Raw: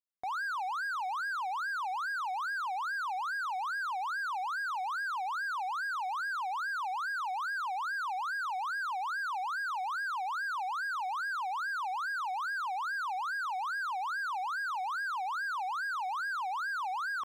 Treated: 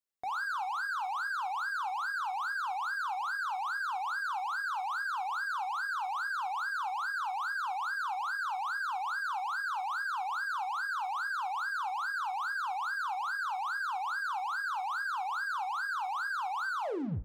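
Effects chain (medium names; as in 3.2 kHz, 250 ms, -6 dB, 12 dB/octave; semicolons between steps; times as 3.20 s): tape stop on the ending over 0.59 s; gated-style reverb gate 140 ms falling, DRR 9 dB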